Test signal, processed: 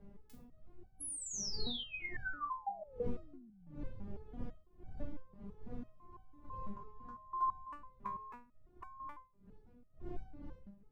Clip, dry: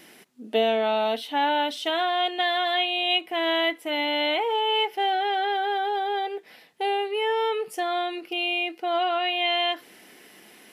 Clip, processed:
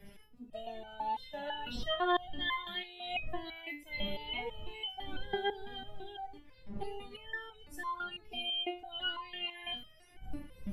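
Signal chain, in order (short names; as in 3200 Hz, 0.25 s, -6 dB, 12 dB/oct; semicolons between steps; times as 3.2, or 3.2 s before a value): bin magnitudes rounded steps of 30 dB; wind noise 150 Hz -32 dBFS; stepped resonator 6 Hz 200–760 Hz; gain +2 dB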